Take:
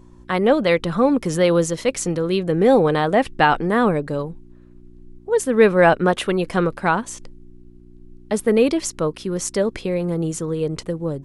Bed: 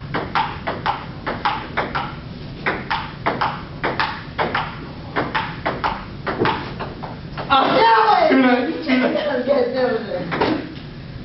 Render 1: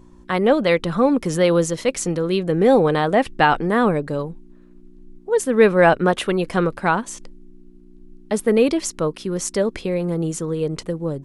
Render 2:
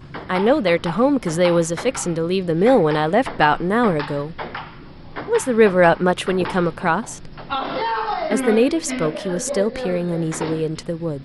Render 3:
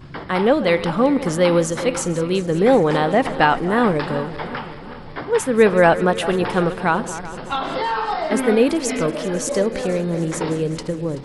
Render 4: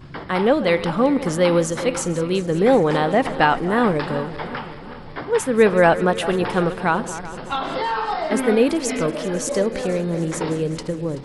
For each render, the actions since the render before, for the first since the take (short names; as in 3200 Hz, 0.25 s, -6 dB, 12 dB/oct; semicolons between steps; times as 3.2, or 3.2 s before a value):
de-hum 60 Hz, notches 2
add bed -9.5 dB
regenerating reverse delay 0.19 s, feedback 73%, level -14 dB
gain -1 dB